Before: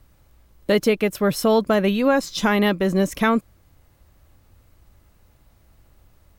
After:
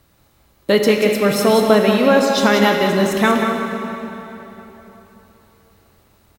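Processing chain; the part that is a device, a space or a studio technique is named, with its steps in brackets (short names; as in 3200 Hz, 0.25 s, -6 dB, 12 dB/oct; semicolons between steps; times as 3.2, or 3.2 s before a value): PA in a hall (HPF 160 Hz 6 dB/oct; bell 3900 Hz +3.5 dB 0.27 oct; echo 0.184 s -7 dB; reverb RT60 3.6 s, pre-delay 7 ms, DRR 2.5 dB); gain +3.5 dB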